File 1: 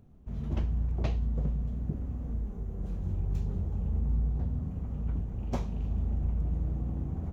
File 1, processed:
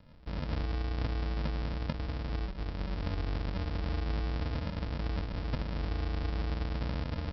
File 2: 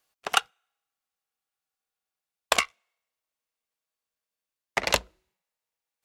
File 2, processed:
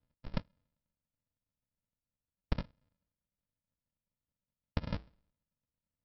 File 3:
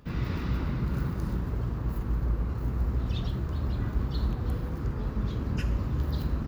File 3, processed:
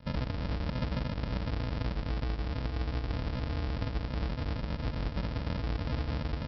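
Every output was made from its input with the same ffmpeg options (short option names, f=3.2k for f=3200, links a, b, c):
-af "acompressor=threshold=-29dB:ratio=6,aresample=11025,acrusher=samples=29:mix=1:aa=0.000001,aresample=44100"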